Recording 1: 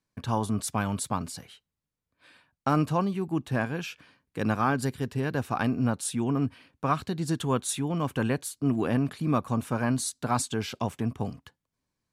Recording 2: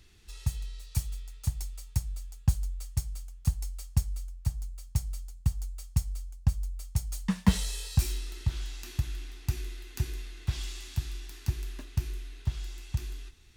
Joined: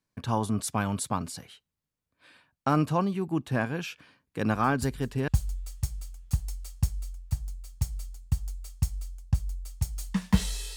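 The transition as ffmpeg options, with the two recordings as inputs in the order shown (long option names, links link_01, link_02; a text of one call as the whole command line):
ffmpeg -i cue0.wav -i cue1.wav -filter_complex "[1:a]asplit=2[link_01][link_02];[0:a]apad=whole_dur=10.76,atrim=end=10.76,atrim=end=5.282[link_03];[link_02]atrim=start=2.418:end=7.9[link_04];[link_01]atrim=start=1.67:end=2.42,asetpts=PTS-STARTPTS,volume=-9dB,afade=type=in:duration=0.004:curve=hsin,afade=type=out:start_time=0.746:duration=0.004:curve=hsin,adelay=199773S[link_05];[link_03][link_04]acrossfade=duration=0.004:curve1=hsin:curve2=hsin[link_06];[link_06][link_05]amix=inputs=2:normalize=0" out.wav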